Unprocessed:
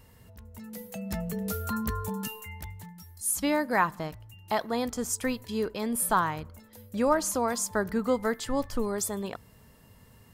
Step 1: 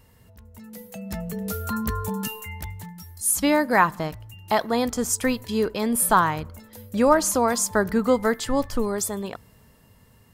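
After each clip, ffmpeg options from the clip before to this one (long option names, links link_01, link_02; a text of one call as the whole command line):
ffmpeg -i in.wav -af "dynaudnorm=framelen=330:gausssize=11:maxgain=7dB" out.wav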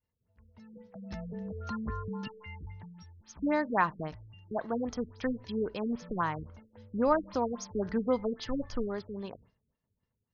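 ffmpeg -i in.wav -af "agate=range=-33dB:threshold=-42dB:ratio=3:detection=peak,afftfilt=real='re*lt(b*sr/1024,440*pow(6800/440,0.5+0.5*sin(2*PI*3.7*pts/sr)))':imag='im*lt(b*sr/1024,440*pow(6800/440,0.5+0.5*sin(2*PI*3.7*pts/sr)))':win_size=1024:overlap=0.75,volume=-8.5dB" out.wav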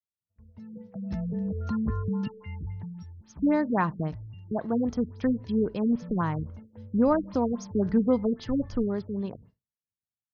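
ffmpeg -i in.wav -af "equalizer=frequency=140:width=0.33:gain=13.5,agate=range=-33dB:threshold=-48dB:ratio=3:detection=peak,volume=-3dB" out.wav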